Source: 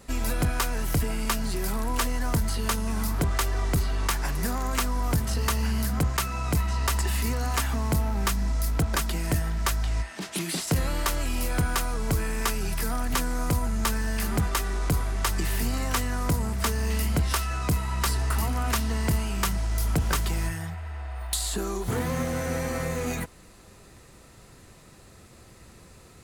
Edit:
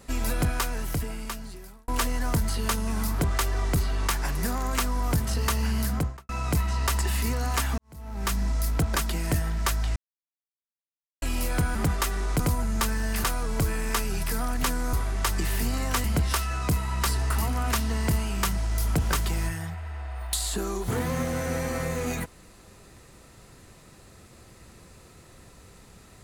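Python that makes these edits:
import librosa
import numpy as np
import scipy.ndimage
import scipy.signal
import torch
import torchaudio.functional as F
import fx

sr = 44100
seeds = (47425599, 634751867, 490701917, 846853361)

y = fx.studio_fade_out(x, sr, start_s=5.9, length_s=0.39)
y = fx.edit(y, sr, fx.fade_out_span(start_s=0.44, length_s=1.44),
    fx.fade_in_span(start_s=7.78, length_s=0.56, curve='qua'),
    fx.silence(start_s=9.96, length_s=1.26),
    fx.swap(start_s=11.75, length_s=1.69, other_s=14.28, other_length_s=0.65),
    fx.cut(start_s=16.04, length_s=1.0), tone=tone)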